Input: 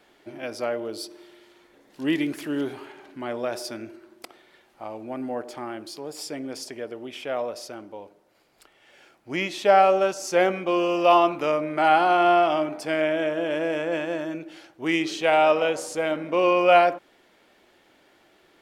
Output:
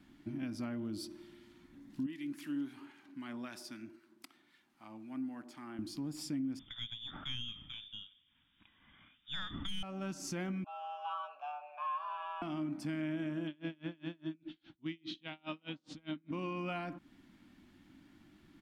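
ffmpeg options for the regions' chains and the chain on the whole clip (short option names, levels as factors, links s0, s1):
-filter_complex "[0:a]asettb=1/sr,asplit=3[s0][s1][s2];[s0]atrim=end=2.064[s3];[s1]atrim=start=2.06:end=5.79,asetpts=PTS-STARTPTS,afade=t=in:d=0.004:c=qsin,afade=t=out:st=3.726:d=0.004:c=qsin,highpass=f=830:p=1,acrossover=split=1300[s4][s5];[s4]aeval=exprs='val(0)*(1-0.5/2+0.5/2*cos(2*PI*3.8*n/s))':c=same[s6];[s5]aeval=exprs='val(0)*(1-0.5/2-0.5/2*cos(2*PI*3.8*n/s))':c=same[s7];[s6][s7]amix=inputs=2:normalize=0[s8];[s2]atrim=start=5.786[s9];[s3][s8]acrossfade=d=0.004:c1=hsin:c2=qsin[s10];[s10][s9]acrossfade=d=0.004:c1=qsin:c2=hsin,asettb=1/sr,asplit=3[s11][s12][s13];[s11]atrim=end=6.594[s14];[s12]atrim=start=6.59:end=9.83,asetpts=PTS-STARTPTS,afade=t=in:d=0.004:c=qsin,afade=t=out:st=3.236:d=0.004:c=qsin,lowpass=f=3200:t=q:w=0.5098,lowpass=f=3200:t=q:w=0.6013,lowpass=f=3200:t=q:w=0.9,lowpass=f=3200:t=q:w=2.563,afreqshift=-3800,aeval=exprs='(tanh(4.47*val(0)+0.25)-tanh(0.25))/4.47':c=same,lowshelf=f=390:g=7.5[s15];[s13]atrim=start=9.826[s16];[s14][s15]acrossfade=d=0.004:c1=hsin:c2=qsin[s17];[s17][s16]acrossfade=d=0.004:c1=qsin:c2=hsin,asettb=1/sr,asplit=3[s18][s19][s20];[s18]atrim=end=10.644[s21];[s19]atrim=start=10.64:end=12.42,asetpts=PTS-STARTPTS,afade=t=in:d=0.004:c=qsin,afade=t=out:st=1.776:d=0.004:c=qsin,afreqshift=280,asplit=3[s22][s23][s24];[s22]bandpass=f=730:t=q:w=8,volume=1[s25];[s23]bandpass=f=1090:t=q:w=8,volume=0.501[s26];[s24]bandpass=f=2440:t=q:w=8,volume=0.355[s27];[s25][s26][s27]amix=inputs=3:normalize=0,asplit=2[s28][s29];[s29]adelay=15,volume=0.447[s30];[s28][s30]amix=inputs=2:normalize=0,atrim=end_sample=78498[s31];[s20]atrim=start=12.416[s32];[s21][s31]acrossfade=d=0.004:c1=hsin:c2=qsin[s33];[s33][s32]acrossfade=d=0.004:c1=qsin:c2=hsin,asettb=1/sr,asplit=3[s34][s35][s36];[s34]atrim=end=13.474[s37];[s35]atrim=start=13.47:end=16.31,asetpts=PTS-STARTPTS,afade=t=in:d=0.004:c=qsin,afade=t=out:st=2.836:d=0.004:c=qsin,lowpass=f=3600:t=q:w=4.8,aeval=exprs='val(0)*pow(10,-37*(0.5-0.5*cos(2*PI*4.9*n/s))/20)':c=same[s38];[s36]atrim=start=16.306[s39];[s37][s38]acrossfade=d=0.004:c1=hsin:c2=qsin[s40];[s40][s39]acrossfade=d=0.004:c1=qsin:c2=hsin,firequalizer=gain_entry='entry(280,0);entry(430,-29);entry(1000,-17)':delay=0.05:min_phase=1,acompressor=threshold=0.00562:ratio=2.5,alimiter=level_in=5.01:limit=0.0631:level=0:latency=1:release=406,volume=0.2,volume=2.51"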